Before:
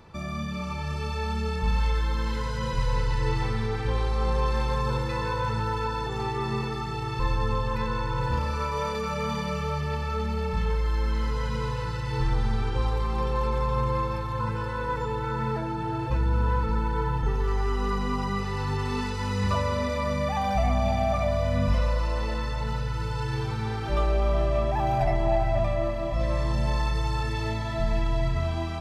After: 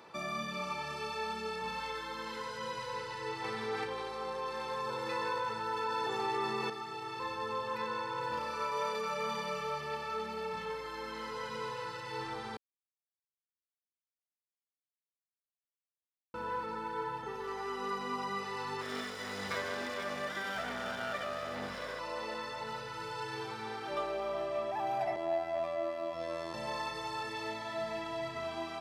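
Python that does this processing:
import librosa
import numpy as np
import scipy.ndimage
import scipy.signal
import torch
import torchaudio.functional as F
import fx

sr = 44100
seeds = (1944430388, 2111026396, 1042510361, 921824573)

y = fx.env_flatten(x, sr, amount_pct=100, at=(3.44, 6.7))
y = fx.lower_of_two(y, sr, delay_ms=0.57, at=(18.81, 21.99))
y = fx.robotise(y, sr, hz=83.4, at=(25.16, 26.54))
y = fx.edit(y, sr, fx.silence(start_s=12.57, length_s=3.77), tone=tone)
y = fx.peak_eq(y, sr, hz=6700.0, db=-3.0, octaves=0.2)
y = fx.rider(y, sr, range_db=10, speed_s=2.0)
y = scipy.signal.sosfilt(scipy.signal.butter(2, 360.0, 'highpass', fs=sr, output='sos'), y)
y = y * 10.0 ** (-6.0 / 20.0)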